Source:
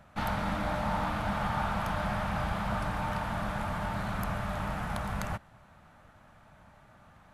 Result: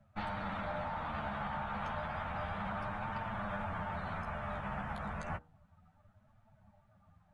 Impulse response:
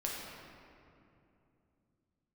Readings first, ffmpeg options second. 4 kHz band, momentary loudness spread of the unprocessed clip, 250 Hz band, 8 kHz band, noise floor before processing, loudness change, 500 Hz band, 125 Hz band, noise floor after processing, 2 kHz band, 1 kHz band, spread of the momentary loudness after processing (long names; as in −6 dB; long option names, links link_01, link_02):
−9.0 dB, 3 LU, −8.5 dB, below −15 dB, −58 dBFS, −6.5 dB, −6.0 dB, −8.5 dB, −68 dBFS, −5.5 dB, −5.5 dB, 2 LU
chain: -filter_complex "[0:a]afftdn=noise_reduction=16:noise_floor=-48,bandreject=frequency=60:width_type=h:width=6,bandreject=frequency=120:width_type=h:width=6,bandreject=frequency=180:width_type=h:width=6,bandreject=frequency=240:width_type=h:width=6,bandreject=frequency=300:width_type=h:width=6,bandreject=frequency=360:width_type=h:width=6,bandreject=frequency=420:width_type=h:width=6,bandreject=frequency=480:width_type=h:width=6,acrossover=split=460|3000[link_01][link_02][link_03];[link_01]acompressor=threshold=-35dB:ratio=4[link_04];[link_04][link_02][link_03]amix=inputs=3:normalize=0,alimiter=level_in=4dB:limit=-24dB:level=0:latency=1:release=70,volume=-4dB,flanger=delay=8.7:depth=6:regen=-6:speed=0.31:shape=triangular,aresample=22050,aresample=44100,volume=1dB"